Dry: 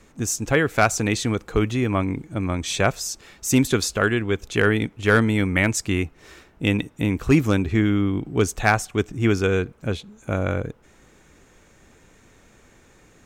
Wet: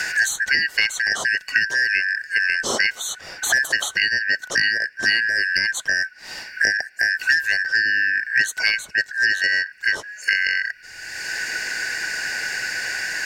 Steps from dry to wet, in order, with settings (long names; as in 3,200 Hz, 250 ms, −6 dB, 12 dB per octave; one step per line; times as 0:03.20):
band-splitting scrambler in four parts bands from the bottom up 3142
multiband upward and downward compressor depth 100%